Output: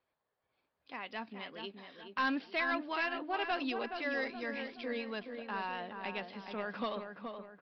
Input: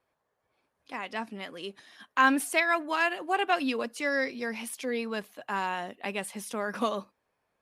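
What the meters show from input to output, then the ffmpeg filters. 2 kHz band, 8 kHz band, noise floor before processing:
-7.5 dB, under -30 dB, -80 dBFS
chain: -filter_complex "[0:a]equalizer=f=3.5k:w=1.1:g=3.5,aresample=11025,asoftclip=type=tanh:threshold=-19dB,aresample=44100,asplit=2[a][b];[b]adelay=423,lowpass=f=1.9k:p=1,volume=-6dB,asplit=2[c][d];[d]adelay=423,lowpass=f=1.9k:p=1,volume=0.47,asplit=2[e][f];[f]adelay=423,lowpass=f=1.9k:p=1,volume=0.47,asplit=2[g][h];[h]adelay=423,lowpass=f=1.9k:p=1,volume=0.47,asplit=2[i][j];[j]adelay=423,lowpass=f=1.9k:p=1,volume=0.47,asplit=2[k][l];[l]adelay=423,lowpass=f=1.9k:p=1,volume=0.47[m];[a][c][e][g][i][k][m]amix=inputs=7:normalize=0,volume=-7dB"

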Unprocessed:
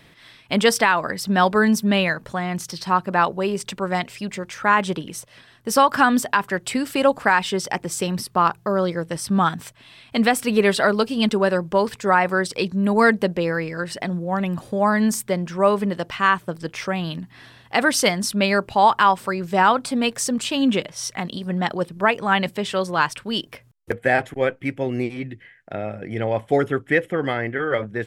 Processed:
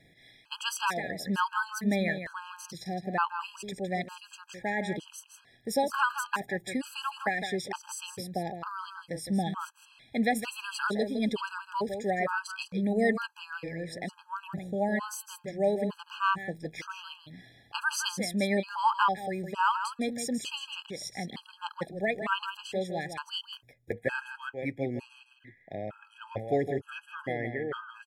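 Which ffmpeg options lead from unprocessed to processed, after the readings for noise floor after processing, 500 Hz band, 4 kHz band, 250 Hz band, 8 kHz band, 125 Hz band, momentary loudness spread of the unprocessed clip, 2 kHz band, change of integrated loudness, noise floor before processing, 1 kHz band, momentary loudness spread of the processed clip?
-62 dBFS, -11.5 dB, -10.5 dB, -11.5 dB, -11.0 dB, -11.0 dB, 11 LU, -11.0 dB, -11.5 dB, -52 dBFS, -11.5 dB, 13 LU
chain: -af "aecho=1:1:161:0.376,afftfilt=real='re*gt(sin(2*PI*1.1*pts/sr)*(1-2*mod(floor(b*sr/1024/820),2)),0)':imag='im*gt(sin(2*PI*1.1*pts/sr)*(1-2*mod(floor(b*sr/1024/820),2)),0)':win_size=1024:overlap=0.75,volume=-8.5dB"

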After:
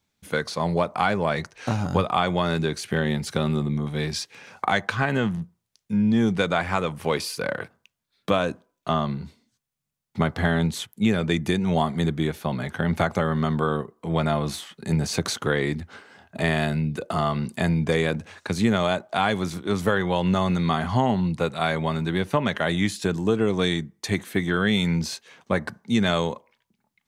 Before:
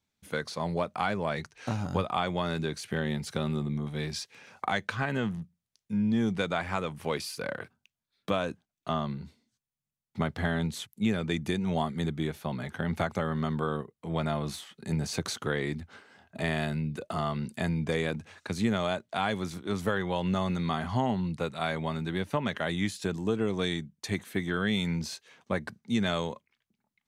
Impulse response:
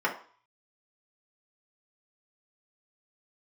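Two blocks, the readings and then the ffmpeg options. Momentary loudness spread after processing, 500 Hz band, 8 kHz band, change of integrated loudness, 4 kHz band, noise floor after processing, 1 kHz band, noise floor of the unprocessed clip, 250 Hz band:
8 LU, +7.0 dB, +6.5 dB, +7.0 dB, +6.5 dB, -79 dBFS, +7.0 dB, under -85 dBFS, +6.5 dB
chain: -filter_complex "[0:a]asplit=2[a][b];[1:a]atrim=start_sample=2205,highshelf=f=2.1k:g=-10.5[c];[b][c]afir=irnorm=-1:irlink=0,volume=-26.5dB[d];[a][d]amix=inputs=2:normalize=0,volume=6.5dB"

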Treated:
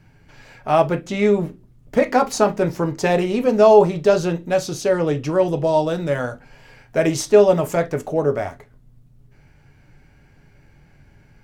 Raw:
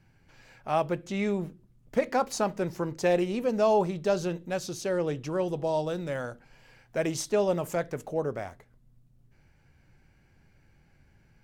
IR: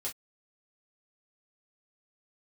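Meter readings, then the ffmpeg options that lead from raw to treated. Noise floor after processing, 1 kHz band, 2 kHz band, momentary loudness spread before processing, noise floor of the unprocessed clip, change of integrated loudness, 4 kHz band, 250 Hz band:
-52 dBFS, +10.0 dB, +9.5 dB, 9 LU, -63 dBFS, +10.5 dB, +8.5 dB, +9.5 dB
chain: -filter_complex "[0:a]asplit=2[a][b];[b]lowpass=f=2.5k:p=1[c];[1:a]atrim=start_sample=2205[d];[c][d]afir=irnorm=-1:irlink=0,volume=-2dB[e];[a][e]amix=inputs=2:normalize=0,volume=6.5dB"

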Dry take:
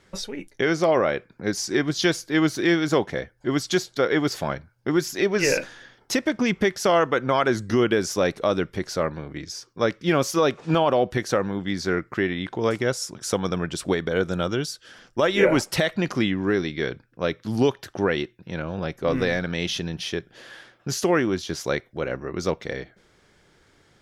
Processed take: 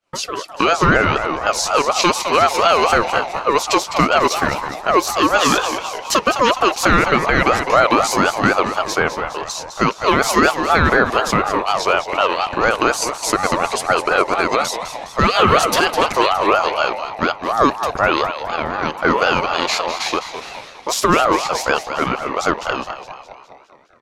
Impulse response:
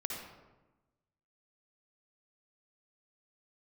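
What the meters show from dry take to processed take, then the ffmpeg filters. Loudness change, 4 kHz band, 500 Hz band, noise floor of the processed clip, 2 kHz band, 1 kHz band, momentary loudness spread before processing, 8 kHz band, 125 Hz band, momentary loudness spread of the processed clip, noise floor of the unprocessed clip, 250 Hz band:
+7.5 dB, +9.0 dB, +4.5 dB, -38 dBFS, +9.5 dB, +14.5 dB, 10 LU, +8.5 dB, +2.0 dB, 9 LU, -60 dBFS, +2.0 dB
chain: -filter_complex "[0:a]highpass=150,agate=range=-33dB:threshold=-46dB:ratio=3:detection=peak,asplit=8[a][b][c][d][e][f][g][h];[b]adelay=206,afreqshift=-120,volume=-10dB[i];[c]adelay=412,afreqshift=-240,volume=-14.7dB[j];[d]adelay=618,afreqshift=-360,volume=-19.5dB[k];[e]adelay=824,afreqshift=-480,volume=-24.2dB[l];[f]adelay=1030,afreqshift=-600,volume=-28.9dB[m];[g]adelay=1236,afreqshift=-720,volume=-33.7dB[n];[h]adelay=1442,afreqshift=-840,volume=-38.4dB[o];[a][i][j][k][l][m][n][o]amix=inputs=8:normalize=0,alimiter=level_in=11dB:limit=-1dB:release=50:level=0:latency=1,aeval=exprs='val(0)*sin(2*PI*860*n/s+860*0.2/4.1*sin(2*PI*4.1*n/s))':c=same"

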